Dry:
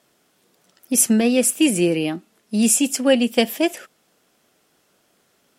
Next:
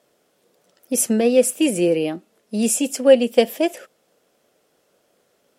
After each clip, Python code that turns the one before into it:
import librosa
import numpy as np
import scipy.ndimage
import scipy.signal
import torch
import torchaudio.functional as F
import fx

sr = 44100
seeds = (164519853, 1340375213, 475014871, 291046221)

y = fx.peak_eq(x, sr, hz=520.0, db=10.0, octaves=0.79)
y = F.gain(torch.from_numpy(y), -4.0).numpy()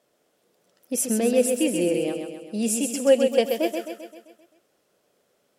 y = fx.echo_feedback(x, sr, ms=131, feedback_pct=54, wet_db=-6.0)
y = F.gain(torch.from_numpy(y), -5.5).numpy()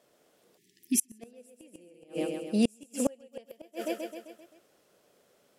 y = fx.spec_erase(x, sr, start_s=0.58, length_s=0.63, low_hz=420.0, high_hz=1700.0)
y = fx.gate_flip(y, sr, shuts_db=-15.0, range_db=-35)
y = F.gain(torch.from_numpy(y), 2.0).numpy()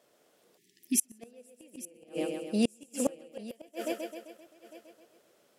y = fx.low_shelf(x, sr, hz=170.0, db=-6.0)
y = y + 10.0 ** (-17.0 / 20.0) * np.pad(y, (int(853 * sr / 1000.0), 0))[:len(y)]